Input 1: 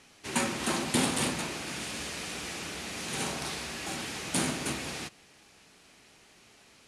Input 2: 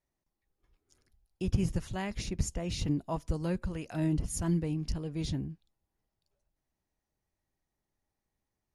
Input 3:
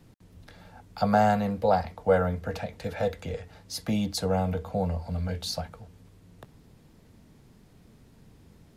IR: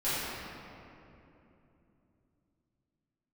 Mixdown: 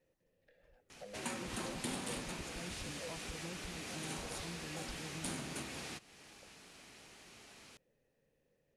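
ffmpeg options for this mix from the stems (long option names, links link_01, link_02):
-filter_complex "[0:a]adelay=900,volume=0.5dB[link_01];[1:a]acompressor=threshold=-35dB:ratio=6,volume=-0.5dB[link_02];[2:a]asoftclip=type=tanh:threshold=-21dB,asplit=3[link_03][link_04][link_05];[link_03]bandpass=frequency=530:width_type=q:width=8,volume=0dB[link_06];[link_04]bandpass=frequency=1840:width_type=q:width=8,volume=-6dB[link_07];[link_05]bandpass=frequency=2480:width_type=q:width=8,volume=-9dB[link_08];[link_06][link_07][link_08]amix=inputs=3:normalize=0,equalizer=frequency=140:width_type=o:width=0.36:gain=9.5,volume=-6.5dB[link_09];[link_01][link_02][link_09]amix=inputs=3:normalize=0,acompressor=threshold=-49dB:ratio=2"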